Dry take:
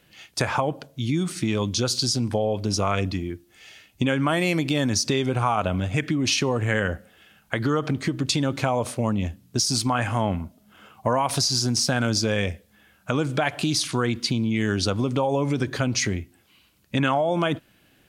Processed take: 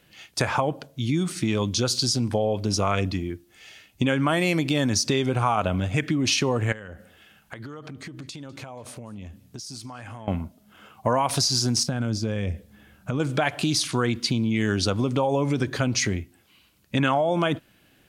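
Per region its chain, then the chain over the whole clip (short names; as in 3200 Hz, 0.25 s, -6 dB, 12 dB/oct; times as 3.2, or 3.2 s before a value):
6.72–10.28 compressor, threshold -36 dBFS + echo 0.201 s -22.5 dB
11.83–13.2 compressor 2:1, threshold -38 dBFS + low shelf 430 Hz +11 dB
whole clip: dry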